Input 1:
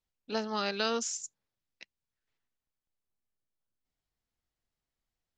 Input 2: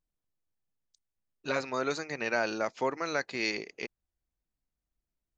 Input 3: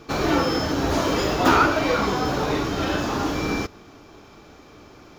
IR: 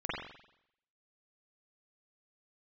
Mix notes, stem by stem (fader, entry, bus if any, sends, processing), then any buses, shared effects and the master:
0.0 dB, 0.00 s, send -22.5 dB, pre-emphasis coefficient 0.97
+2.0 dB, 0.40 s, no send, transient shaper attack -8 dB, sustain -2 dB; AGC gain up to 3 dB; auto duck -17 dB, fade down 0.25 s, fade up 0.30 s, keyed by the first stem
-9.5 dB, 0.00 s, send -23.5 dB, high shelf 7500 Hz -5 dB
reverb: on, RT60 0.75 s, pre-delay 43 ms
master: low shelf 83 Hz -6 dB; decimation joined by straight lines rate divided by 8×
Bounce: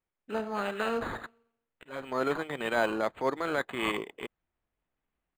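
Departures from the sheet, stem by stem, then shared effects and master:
stem 1: missing pre-emphasis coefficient 0.97; stem 3: muted; reverb return +7.0 dB

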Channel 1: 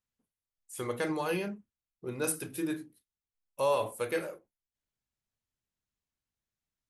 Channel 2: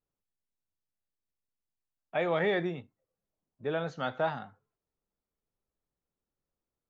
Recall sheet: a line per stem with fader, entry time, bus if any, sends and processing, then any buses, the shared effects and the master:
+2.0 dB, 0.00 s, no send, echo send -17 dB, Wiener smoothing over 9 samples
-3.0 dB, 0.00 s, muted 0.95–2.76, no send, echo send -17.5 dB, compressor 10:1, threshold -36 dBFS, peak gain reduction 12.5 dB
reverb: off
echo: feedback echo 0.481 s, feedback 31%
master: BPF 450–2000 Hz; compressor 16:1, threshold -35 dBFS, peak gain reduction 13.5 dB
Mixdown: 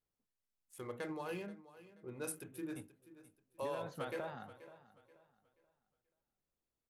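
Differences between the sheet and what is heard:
stem 1 +2.0 dB -> -10.0 dB; master: missing BPF 450–2000 Hz

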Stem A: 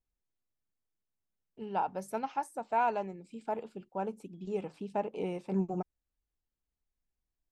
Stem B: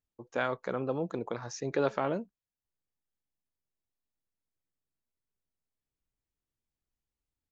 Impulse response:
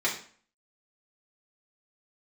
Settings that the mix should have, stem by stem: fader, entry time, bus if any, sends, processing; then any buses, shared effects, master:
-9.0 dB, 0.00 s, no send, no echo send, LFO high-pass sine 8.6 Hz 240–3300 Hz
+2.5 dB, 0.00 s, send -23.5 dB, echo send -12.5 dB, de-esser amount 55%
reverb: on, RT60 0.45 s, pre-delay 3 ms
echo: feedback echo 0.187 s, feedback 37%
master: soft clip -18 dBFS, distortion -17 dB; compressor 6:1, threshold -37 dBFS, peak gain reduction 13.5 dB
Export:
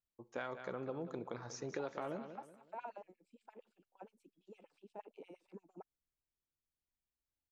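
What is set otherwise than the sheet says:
stem A -9.0 dB -> -20.0 dB; stem B +2.5 dB -> -8.0 dB

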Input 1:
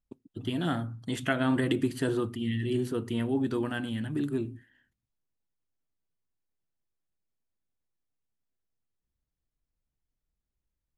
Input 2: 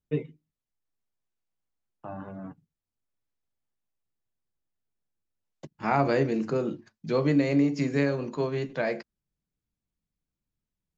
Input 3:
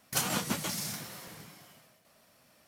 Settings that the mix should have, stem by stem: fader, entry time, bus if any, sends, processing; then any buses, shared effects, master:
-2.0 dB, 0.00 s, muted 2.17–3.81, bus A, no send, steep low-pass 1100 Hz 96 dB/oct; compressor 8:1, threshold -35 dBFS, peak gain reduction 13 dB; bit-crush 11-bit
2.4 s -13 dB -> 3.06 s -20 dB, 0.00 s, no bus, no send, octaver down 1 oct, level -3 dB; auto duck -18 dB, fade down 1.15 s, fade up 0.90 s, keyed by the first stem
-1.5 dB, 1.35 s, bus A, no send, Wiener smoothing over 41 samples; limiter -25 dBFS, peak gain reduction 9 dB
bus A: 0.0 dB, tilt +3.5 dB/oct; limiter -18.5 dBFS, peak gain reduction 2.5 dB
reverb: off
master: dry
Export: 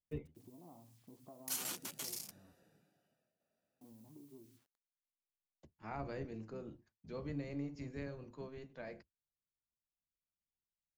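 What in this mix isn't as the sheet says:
stem 1 -2.0 dB -> -12.5 dB; stem 3 -1.5 dB -> -11.5 dB

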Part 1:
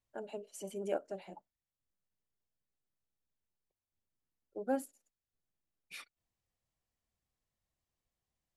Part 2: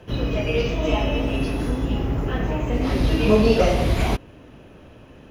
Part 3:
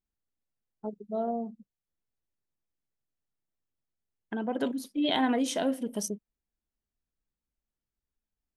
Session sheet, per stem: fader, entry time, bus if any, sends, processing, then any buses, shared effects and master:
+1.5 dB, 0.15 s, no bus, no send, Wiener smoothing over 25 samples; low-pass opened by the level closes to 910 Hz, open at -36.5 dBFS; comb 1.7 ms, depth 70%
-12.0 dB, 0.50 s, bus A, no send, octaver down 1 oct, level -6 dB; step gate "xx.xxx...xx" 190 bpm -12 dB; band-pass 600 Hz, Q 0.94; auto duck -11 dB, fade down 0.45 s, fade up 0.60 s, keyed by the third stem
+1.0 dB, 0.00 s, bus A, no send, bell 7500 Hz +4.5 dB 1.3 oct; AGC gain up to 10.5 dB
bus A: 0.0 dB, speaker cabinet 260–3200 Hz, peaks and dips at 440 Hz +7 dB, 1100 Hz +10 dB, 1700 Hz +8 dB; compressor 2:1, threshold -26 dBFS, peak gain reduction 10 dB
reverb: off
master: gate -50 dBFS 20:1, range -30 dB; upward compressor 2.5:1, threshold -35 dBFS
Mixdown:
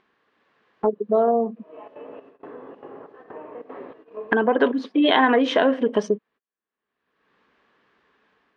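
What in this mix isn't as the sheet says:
stem 1: muted; stem 2: entry 0.50 s -> 0.85 s; stem 3 +1.0 dB -> +12.5 dB

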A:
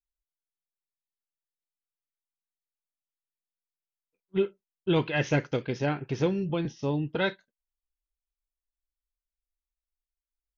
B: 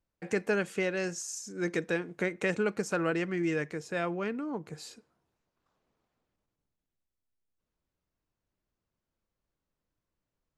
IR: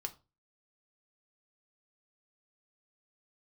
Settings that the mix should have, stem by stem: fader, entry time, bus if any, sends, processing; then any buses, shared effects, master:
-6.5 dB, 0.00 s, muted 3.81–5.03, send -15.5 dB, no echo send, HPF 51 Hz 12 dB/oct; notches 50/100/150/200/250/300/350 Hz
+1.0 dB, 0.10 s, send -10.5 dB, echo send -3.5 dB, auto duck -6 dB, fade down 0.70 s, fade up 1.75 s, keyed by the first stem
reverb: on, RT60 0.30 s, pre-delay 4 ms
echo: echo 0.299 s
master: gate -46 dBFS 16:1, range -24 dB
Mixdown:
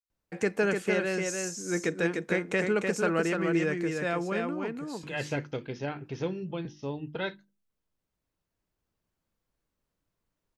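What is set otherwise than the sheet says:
stem B: send -10.5 dB -> -17 dB; master: missing gate -46 dBFS 16:1, range -24 dB

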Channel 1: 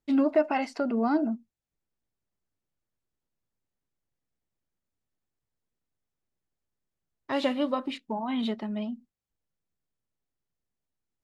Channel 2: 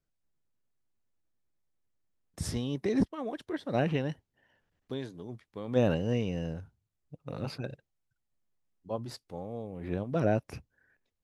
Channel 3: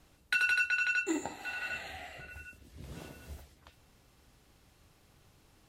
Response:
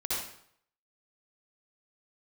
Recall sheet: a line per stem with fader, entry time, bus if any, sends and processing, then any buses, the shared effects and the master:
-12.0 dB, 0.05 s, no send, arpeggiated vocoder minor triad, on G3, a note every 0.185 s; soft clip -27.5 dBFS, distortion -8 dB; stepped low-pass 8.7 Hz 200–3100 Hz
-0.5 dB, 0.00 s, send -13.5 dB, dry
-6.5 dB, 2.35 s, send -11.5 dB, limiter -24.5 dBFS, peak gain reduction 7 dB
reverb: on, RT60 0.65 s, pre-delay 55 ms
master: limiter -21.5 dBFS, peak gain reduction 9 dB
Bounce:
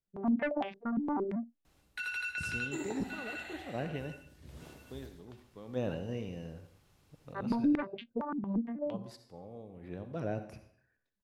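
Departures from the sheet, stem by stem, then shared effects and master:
stem 1 -12.0 dB -> -3.0 dB; stem 2 -0.5 dB -> -10.5 dB; stem 3: entry 2.35 s -> 1.65 s

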